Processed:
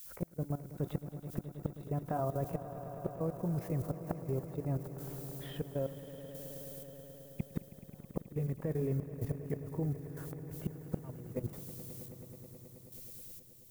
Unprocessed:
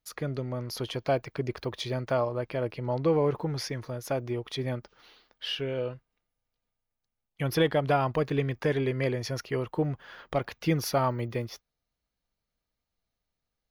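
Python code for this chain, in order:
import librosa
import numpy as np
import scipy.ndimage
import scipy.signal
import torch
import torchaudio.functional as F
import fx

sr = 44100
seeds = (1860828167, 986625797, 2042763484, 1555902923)

p1 = fx.pitch_glide(x, sr, semitones=2.5, runs='ending unshifted')
p2 = fx.recorder_agc(p1, sr, target_db=-16.5, rise_db_per_s=5.3, max_gain_db=30)
p3 = scipy.signal.sosfilt(scipy.signal.butter(2, 1200.0, 'lowpass', fs=sr, output='sos'), p2)
p4 = fx.low_shelf(p3, sr, hz=280.0, db=11.5)
p5 = fx.dmg_noise_colour(p4, sr, seeds[0], colour='violet', level_db=-49.0)
p6 = p5 * (1.0 - 0.72 / 2.0 + 0.72 / 2.0 * np.cos(2.0 * np.pi * 0.76 * (np.arange(len(p5)) / sr)))
p7 = fx.gate_flip(p6, sr, shuts_db=-18.0, range_db=-40)
p8 = fx.level_steps(p7, sr, step_db=17)
p9 = p8 + fx.echo_swell(p8, sr, ms=107, loudest=5, wet_db=-16, dry=0)
y = F.gain(torch.from_numpy(p9), 1.0).numpy()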